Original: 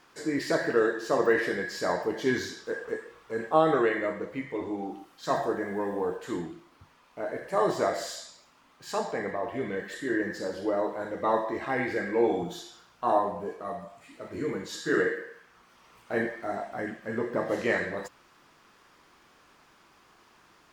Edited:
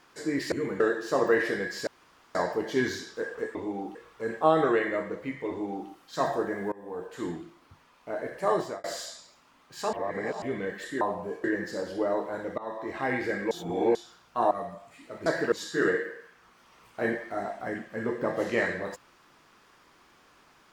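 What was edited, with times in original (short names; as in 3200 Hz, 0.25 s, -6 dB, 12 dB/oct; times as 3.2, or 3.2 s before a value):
0.52–0.78 swap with 14.36–14.64
1.85 insert room tone 0.48 s
4.59–4.99 copy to 3.05
5.82–6.41 fade in, from -22.5 dB
7.61–7.94 fade out
9.03–9.52 reverse
11.25–11.68 fade in, from -22 dB
12.18–12.62 reverse
13.18–13.61 move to 10.11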